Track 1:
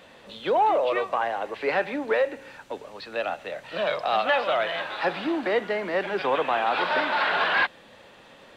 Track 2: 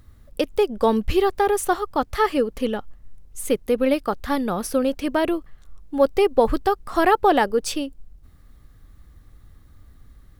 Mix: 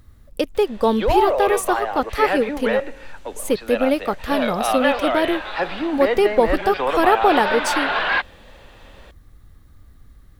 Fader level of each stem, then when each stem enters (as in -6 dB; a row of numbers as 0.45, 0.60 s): +2.5, +1.0 dB; 0.55, 0.00 s